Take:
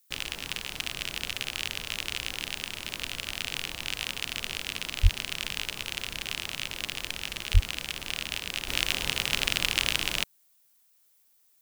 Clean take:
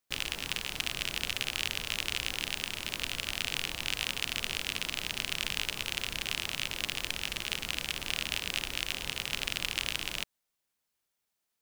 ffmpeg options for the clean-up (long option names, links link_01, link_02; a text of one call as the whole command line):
ffmpeg -i in.wav -filter_complex "[0:a]asplit=3[link_01][link_02][link_03];[link_01]afade=type=out:start_time=5.02:duration=0.02[link_04];[link_02]highpass=frequency=140:width=0.5412,highpass=frequency=140:width=1.3066,afade=type=in:start_time=5.02:duration=0.02,afade=type=out:start_time=5.14:duration=0.02[link_05];[link_03]afade=type=in:start_time=5.14:duration=0.02[link_06];[link_04][link_05][link_06]amix=inputs=3:normalize=0,asplit=3[link_07][link_08][link_09];[link_07]afade=type=out:start_time=7.53:duration=0.02[link_10];[link_08]highpass=frequency=140:width=0.5412,highpass=frequency=140:width=1.3066,afade=type=in:start_time=7.53:duration=0.02,afade=type=out:start_time=7.65:duration=0.02[link_11];[link_09]afade=type=in:start_time=7.65:duration=0.02[link_12];[link_10][link_11][link_12]amix=inputs=3:normalize=0,agate=range=-21dB:threshold=-56dB,asetnsamples=nb_out_samples=441:pad=0,asendcmd='8.68 volume volume -6.5dB',volume=0dB" out.wav